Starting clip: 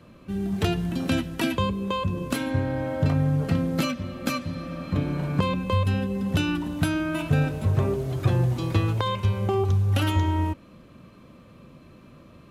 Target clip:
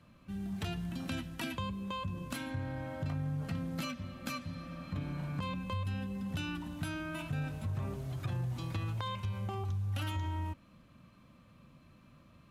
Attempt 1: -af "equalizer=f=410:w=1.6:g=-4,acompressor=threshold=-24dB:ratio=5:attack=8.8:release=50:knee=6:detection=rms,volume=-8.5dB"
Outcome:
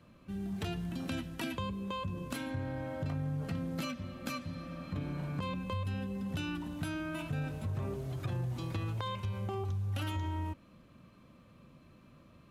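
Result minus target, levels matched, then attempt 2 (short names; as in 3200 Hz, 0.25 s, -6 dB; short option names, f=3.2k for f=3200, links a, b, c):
500 Hz band +3.0 dB
-af "equalizer=f=410:w=1.6:g=-10.5,acompressor=threshold=-24dB:ratio=5:attack=8.8:release=50:knee=6:detection=rms,volume=-8.5dB"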